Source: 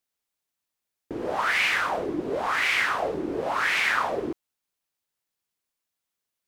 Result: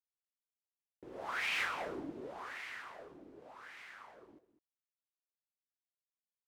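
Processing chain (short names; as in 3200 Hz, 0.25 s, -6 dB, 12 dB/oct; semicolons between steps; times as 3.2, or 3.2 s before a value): Doppler pass-by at 1.64, 25 m/s, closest 1.3 m; compressor 8:1, threshold -36 dBFS, peak gain reduction 14 dB; echo 0.203 s -14 dB; gain +3 dB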